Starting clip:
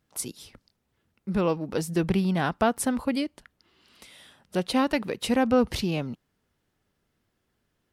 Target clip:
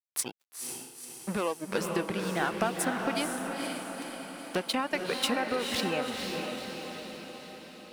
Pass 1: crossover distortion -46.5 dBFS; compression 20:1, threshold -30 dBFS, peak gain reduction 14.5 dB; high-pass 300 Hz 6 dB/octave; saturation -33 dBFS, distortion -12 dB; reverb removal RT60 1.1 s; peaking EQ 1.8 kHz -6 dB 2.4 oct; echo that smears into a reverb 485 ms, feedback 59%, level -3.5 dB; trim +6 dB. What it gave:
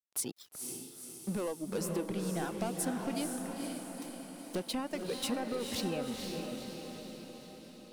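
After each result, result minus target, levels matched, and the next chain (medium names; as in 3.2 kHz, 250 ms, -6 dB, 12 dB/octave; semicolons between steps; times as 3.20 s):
saturation: distortion +13 dB; 2 kHz band -7.5 dB; crossover distortion: distortion -8 dB
crossover distortion -46.5 dBFS; compression 20:1, threshold -30 dBFS, peak gain reduction 14.5 dB; high-pass 300 Hz 6 dB/octave; saturation -22.5 dBFS, distortion -25 dB; reverb removal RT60 1.1 s; peaking EQ 1.8 kHz -6 dB 2.4 oct; echo that smears into a reverb 485 ms, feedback 59%, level -3.5 dB; trim +6 dB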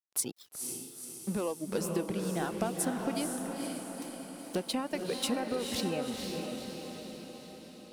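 2 kHz band -7.0 dB; crossover distortion: distortion -8 dB
crossover distortion -46.5 dBFS; compression 20:1, threshold -30 dBFS, peak gain reduction 14.5 dB; high-pass 300 Hz 6 dB/octave; saturation -22.5 dBFS, distortion -25 dB; reverb removal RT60 1.1 s; peaking EQ 1.8 kHz +4.5 dB 2.4 oct; echo that smears into a reverb 485 ms, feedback 59%, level -3.5 dB; trim +6 dB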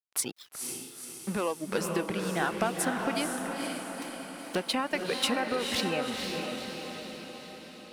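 crossover distortion: distortion -8 dB
crossover distortion -38 dBFS; compression 20:1, threshold -30 dBFS, peak gain reduction 14.5 dB; high-pass 300 Hz 6 dB/octave; saturation -22.5 dBFS, distortion -25 dB; reverb removal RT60 1.1 s; peaking EQ 1.8 kHz +4.5 dB 2.4 oct; echo that smears into a reverb 485 ms, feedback 59%, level -3.5 dB; trim +6 dB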